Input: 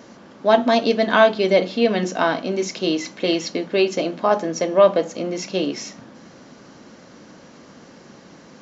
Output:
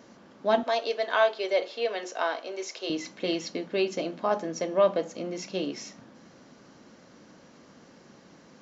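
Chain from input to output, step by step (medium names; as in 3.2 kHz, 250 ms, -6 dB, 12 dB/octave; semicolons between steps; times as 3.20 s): 0.63–2.90 s: high-pass 410 Hz 24 dB/octave; trim -8.5 dB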